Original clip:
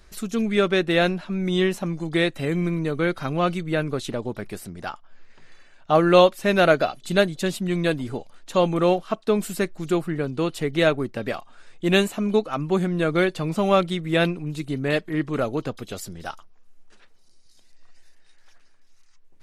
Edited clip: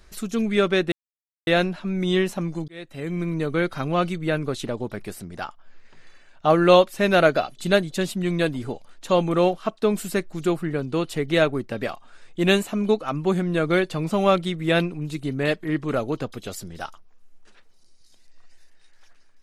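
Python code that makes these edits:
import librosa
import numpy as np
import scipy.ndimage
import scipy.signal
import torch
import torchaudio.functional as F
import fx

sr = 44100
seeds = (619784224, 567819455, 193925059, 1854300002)

y = fx.edit(x, sr, fx.insert_silence(at_s=0.92, length_s=0.55),
    fx.fade_in_span(start_s=2.13, length_s=0.72), tone=tone)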